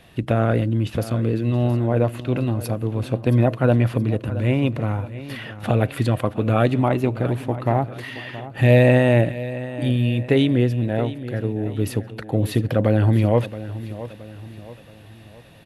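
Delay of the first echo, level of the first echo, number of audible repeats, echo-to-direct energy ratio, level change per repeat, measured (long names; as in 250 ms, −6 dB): 673 ms, −14.5 dB, 3, −13.5 dB, −7.5 dB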